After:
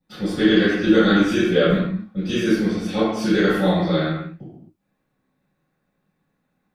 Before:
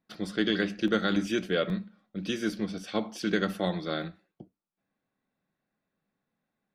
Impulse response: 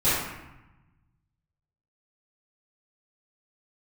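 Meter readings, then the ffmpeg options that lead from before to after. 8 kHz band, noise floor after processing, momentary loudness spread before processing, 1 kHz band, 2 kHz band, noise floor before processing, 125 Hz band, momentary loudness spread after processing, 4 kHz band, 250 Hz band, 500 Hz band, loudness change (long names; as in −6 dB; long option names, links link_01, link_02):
+6.5 dB, −73 dBFS, 8 LU, +9.5 dB, +9.5 dB, below −85 dBFS, +12.5 dB, 9 LU, +7.5 dB, +11.5 dB, +11.5 dB, +11.0 dB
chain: -filter_complex "[1:a]atrim=start_sample=2205,afade=type=out:start_time=0.33:duration=0.01,atrim=end_sample=14994[link_01];[0:a][link_01]afir=irnorm=-1:irlink=0,volume=-5.5dB"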